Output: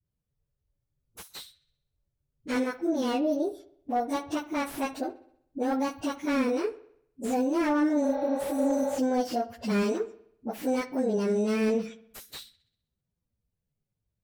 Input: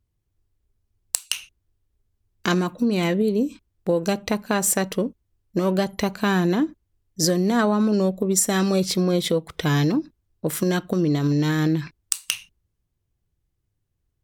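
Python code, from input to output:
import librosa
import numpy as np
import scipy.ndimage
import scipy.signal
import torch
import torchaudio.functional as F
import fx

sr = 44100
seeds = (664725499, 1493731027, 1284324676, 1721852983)

p1 = fx.pitch_bins(x, sr, semitones=6.0)
p2 = fx.dispersion(p1, sr, late='highs', ms=52.0, hz=380.0)
p3 = p2 + fx.echo_wet_lowpass(p2, sr, ms=64, feedback_pct=53, hz=3300.0, wet_db=-17.0, dry=0)
p4 = fx.spec_repair(p3, sr, seeds[0], start_s=8.07, length_s=0.89, low_hz=370.0, high_hz=5900.0, source='before')
p5 = fx.slew_limit(p4, sr, full_power_hz=96.0)
y = p5 * librosa.db_to_amplitude(-4.5)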